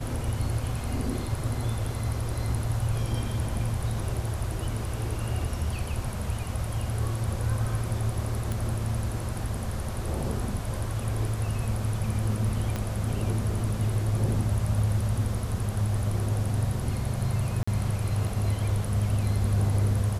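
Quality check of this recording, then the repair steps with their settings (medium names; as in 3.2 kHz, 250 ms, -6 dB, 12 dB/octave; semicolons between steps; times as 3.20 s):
8.52 s: pop
12.76 s: pop -16 dBFS
17.63–17.68 s: dropout 45 ms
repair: de-click; interpolate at 17.63 s, 45 ms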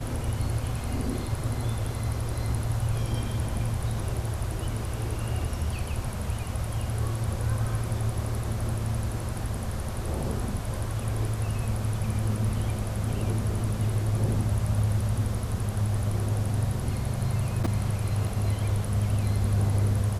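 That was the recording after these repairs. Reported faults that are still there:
12.76 s: pop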